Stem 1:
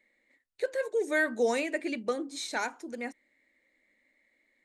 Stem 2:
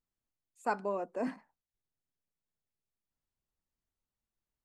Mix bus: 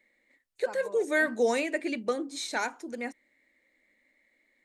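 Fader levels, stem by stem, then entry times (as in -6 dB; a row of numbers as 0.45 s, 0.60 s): +1.5 dB, -10.5 dB; 0.00 s, 0.00 s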